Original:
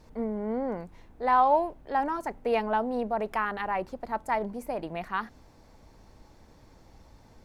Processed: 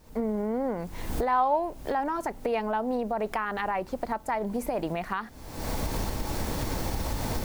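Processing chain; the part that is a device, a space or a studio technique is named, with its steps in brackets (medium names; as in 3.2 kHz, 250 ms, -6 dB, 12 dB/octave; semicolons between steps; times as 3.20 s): cheap recorder with automatic gain (white noise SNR 36 dB; recorder AGC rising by 56 dB/s); trim -2.5 dB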